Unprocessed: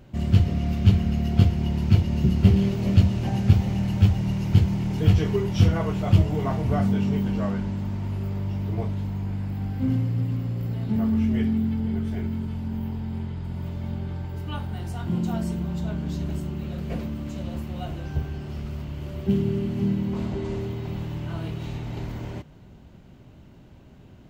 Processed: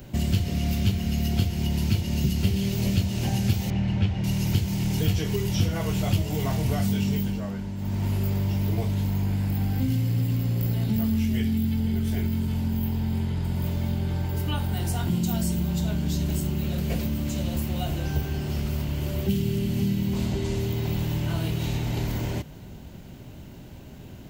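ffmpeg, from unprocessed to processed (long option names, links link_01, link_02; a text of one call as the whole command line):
ffmpeg -i in.wav -filter_complex "[0:a]asettb=1/sr,asplit=3[link_01][link_02][link_03];[link_01]atrim=end=3.704[link_04];[link_02]atrim=start=3.7:end=4.24,asetpts=PTS-STARTPTS,afade=type=in:duration=0.004:curve=qsin,afade=type=out:start_time=0.536:duration=0.004:curve=qsin,lowpass=2400[link_05];[link_03]atrim=start=4.236[link_06];[link_04][link_05]acrossfade=duration=0.004:curve1=hsin:curve2=qsin[link_07];[link_07][link_06]acrossfade=duration=0.004:curve1=qsin:curve2=hsin,asplit=3[link_08][link_09][link_10];[link_08]atrim=end=7.41,asetpts=PTS-STARTPTS,afade=type=out:start_time=7.09:duration=0.32:silence=0.298538[link_11];[link_09]atrim=start=7.41:end=7.77,asetpts=PTS-STARTPTS,volume=-10.5dB[link_12];[link_10]atrim=start=7.77,asetpts=PTS-STARTPTS,afade=type=in:duration=0.32:silence=0.298538[link_13];[link_11][link_12][link_13]concat=n=3:v=0:a=1,equalizer=frequency=1200:width=4.1:gain=-4,acrossover=split=160|2300[link_14][link_15][link_16];[link_14]acompressor=threshold=-31dB:ratio=4[link_17];[link_15]acompressor=threshold=-36dB:ratio=4[link_18];[link_16]acompressor=threshold=-46dB:ratio=4[link_19];[link_17][link_18][link_19]amix=inputs=3:normalize=0,aemphasis=mode=production:type=50kf,volume=6dB" out.wav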